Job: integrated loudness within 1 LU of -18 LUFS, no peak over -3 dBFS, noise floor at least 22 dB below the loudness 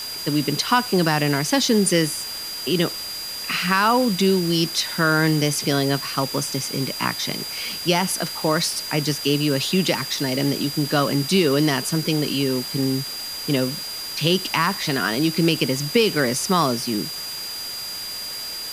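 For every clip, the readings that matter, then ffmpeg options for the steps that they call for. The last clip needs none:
steady tone 4800 Hz; tone level -30 dBFS; noise floor -31 dBFS; noise floor target -44 dBFS; loudness -21.5 LUFS; peak -4.0 dBFS; loudness target -18.0 LUFS
-> -af "bandreject=f=4.8k:w=30"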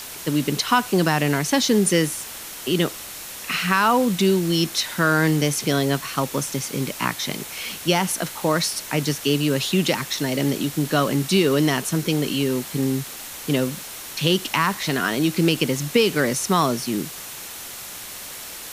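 steady tone none; noise floor -36 dBFS; noise floor target -44 dBFS
-> -af "afftdn=nr=8:nf=-36"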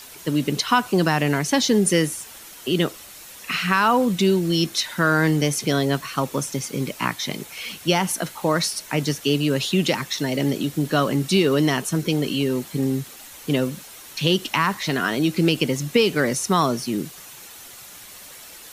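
noise floor -42 dBFS; noise floor target -44 dBFS
-> -af "afftdn=nr=6:nf=-42"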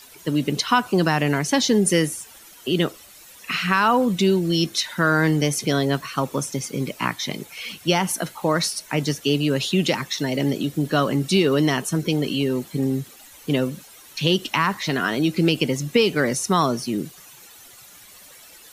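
noise floor -47 dBFS; loudness -22.0 LUFS; peak -4.5 dBFS; loudness target -18.0 LUFS
-> -af "volume=4dB,alimiter=limit=-3dB:level=0:latency=1"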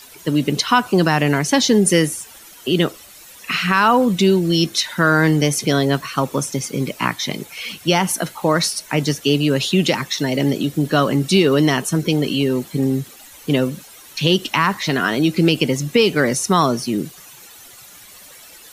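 loudness -18.0 LUFS; peak -3.0 dBFS; noise floor -43 dBFS

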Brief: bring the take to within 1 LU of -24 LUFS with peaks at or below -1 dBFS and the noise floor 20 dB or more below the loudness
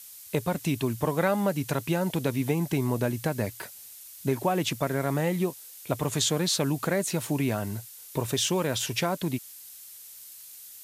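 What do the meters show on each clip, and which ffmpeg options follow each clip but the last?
noise floor -47 dBFS; noise floor target -48 dBFS; loudness -28.0 LUFS; peak -11.0 dBFS; loudness target -24.0 LUFS
-> -af "afftdn=nr=6:nf=-47"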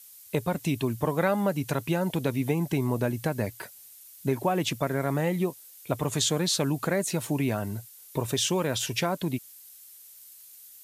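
noise floor -50 dBFS; loudness -28.0 LUFS; peak -11.0 dBFS; loudness target -24.0 LUFS
-> -af "volume=4dB"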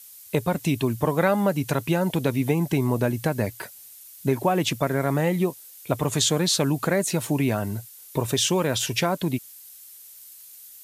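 loudness -24.0 LUFS; peak -7.0 dBFS; noise floor -46 dBFS

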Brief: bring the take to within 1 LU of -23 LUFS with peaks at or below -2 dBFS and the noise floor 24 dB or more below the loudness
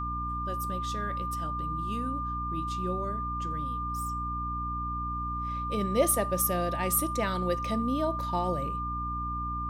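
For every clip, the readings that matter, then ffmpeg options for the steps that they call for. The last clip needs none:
hum 60 Hz; harmonics up to 300 Hz; hum level -34 dBFS; steady tone 1200 Hz; tone level -32 dBFS; loudness -30.5 LUFS; peak -11.0 dBFS; loudness target -23.0 LUFS
-> -af "bandreject=f=60:t=h:w=6,bandreject=f=120:t=h:w=6,bandreject=f=180:t=h:w=6,bandreject=f=240:t=h:w=6,bandreject=f=300:t=h:w=6"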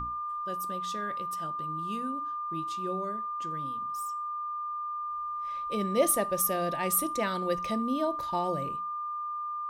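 hum none; steady tone 1200 Hz; tone level -32 dBFS
-> -af "bandreject=f=1.2k:w=30"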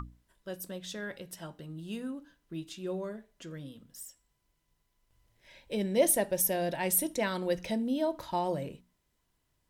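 steady tone none; loudness -31.5 LUFS; peak -12.5 dBFS; loudness target -23.0 LUFS
-> -af "volume=8.5dB"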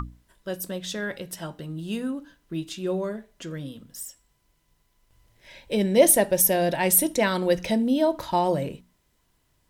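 loudness -23.5 LUFS; peak -4.0 dBFS; noise floor -69 dBFS

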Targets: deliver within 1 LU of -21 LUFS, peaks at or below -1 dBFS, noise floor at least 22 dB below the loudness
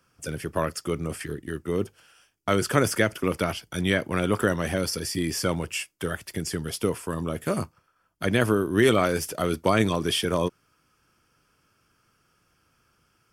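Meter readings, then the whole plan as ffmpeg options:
loudness -26.5 LUFS; peak -4.5 dBFS; loudness target -21.0 LUFS
-> -af "volume=5.5dB,alimiter=limit=-1dB:level=0:latency=1"

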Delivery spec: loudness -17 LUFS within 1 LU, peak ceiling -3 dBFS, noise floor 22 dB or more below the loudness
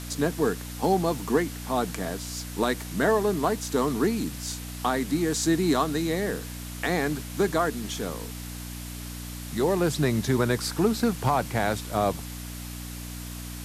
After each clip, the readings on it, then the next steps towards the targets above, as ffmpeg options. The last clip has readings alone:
hum 60 Hz; harmonics up to 300 Hz; hum level -36 dBFS; noise floor -37 dBFS; noise floor target -50 dBFS; loudness -27.5 LUFS; peak -11.0 dBFS; loudness target -17.0 LUFS
-> -af "bandreject=f=60:t=h:w=4,bandreject=f=120:t=h:w=4,bandreject=f=180:t=h:w=4,bandreject=f=240:t=h:w=4,bandreject=f=300:t=h:w=4"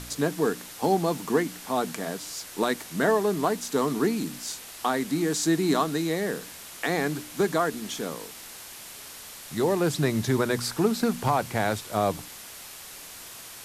hum none; noise floor -43 dBFS; noise floor target -49 dBFS
-> -af "afftdn=nr=6:nf=-43"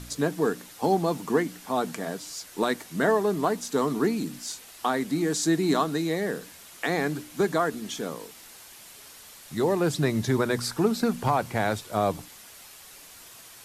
noise floor -48 dBFS; noise floor target -49 dBFS
-> -af "afftdn=nr=6:nf=-48"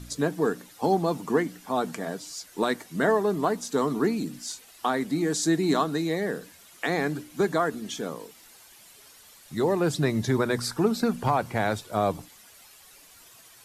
noise floor -53 dBFS; loudness -27.0 LUFS; peak -11.5 dBFS; loudness target -17.0 LUFS
-> -af "volume=10dB,alimiter=limit=-3dB:level=0:latency=1"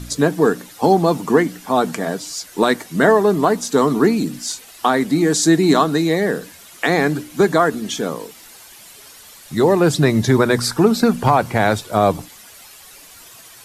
loudness -17.0 LUFS; peak -3.0 dBFS; noise floor -43 dBFS

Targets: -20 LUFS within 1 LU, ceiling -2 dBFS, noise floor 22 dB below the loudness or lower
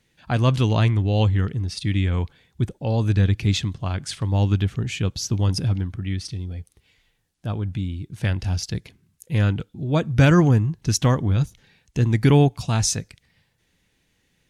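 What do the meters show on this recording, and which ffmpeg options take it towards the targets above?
loudness -22.0 LUFS; peak -6.0 dBFS; loudness target -20.0 LUFS
-> -af "volume=2dB"

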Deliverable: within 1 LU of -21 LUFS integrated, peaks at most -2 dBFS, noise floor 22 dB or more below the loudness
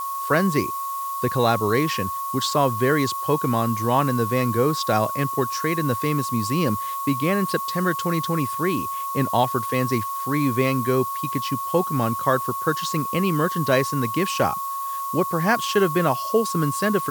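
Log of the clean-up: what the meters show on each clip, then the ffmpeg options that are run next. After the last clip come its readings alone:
steady tone 1100 Hz; tone level -26 dBFS; noise floor -29 dBFS; noise floor target -45 dBFS; loudness -22.5 LUFS; peak -5.5 dBFS; loudness target -21.0 LUFS
-> -af "bandreject=f=1.1k:w=30"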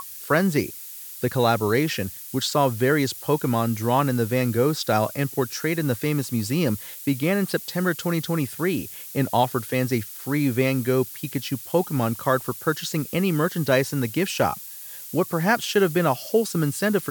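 steady tone none; noise floor -39 dBFS; noise floor target -46 dBFS
-> -af "afftdn=nr=7:nf=-39"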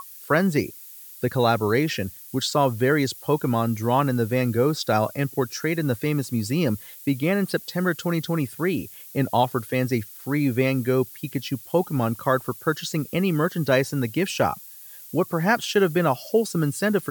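noise floor -43 dBFS; noise floor target -46 dBFS
-> -af "afftdn=nr=6:nf=-43"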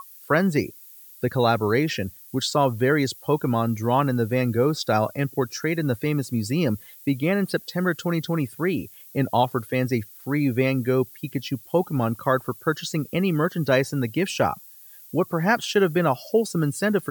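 noise floor -47 dBFS; loudness -24.0 LUFS; peak -6.0 dBFS; loudness target -21.0 LUFS
-> -af "volume=3dB"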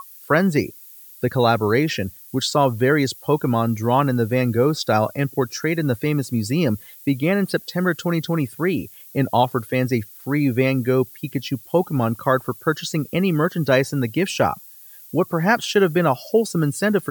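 loudness -21.0 LUFS; peak -3.0 dBFS; noise floor -44 dBFS

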